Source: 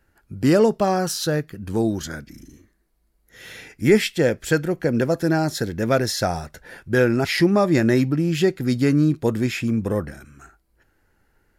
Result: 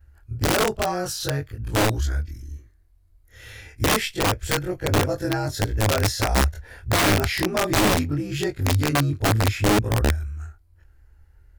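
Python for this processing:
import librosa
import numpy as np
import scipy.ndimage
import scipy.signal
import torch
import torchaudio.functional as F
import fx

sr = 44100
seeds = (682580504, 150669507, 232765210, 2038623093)

y = fx.frame_reverse(x, sr, frame_ms=55.0)
y = fx.low_shelf_res(y, sr, hz=120.0, db=14.0, q=3.0)
y = (np.mod(10.0 ** (14.0 / 20.0) * y + 1.0, 2.0) - 1.0) / 10.0 ** (14.0 / 20.0)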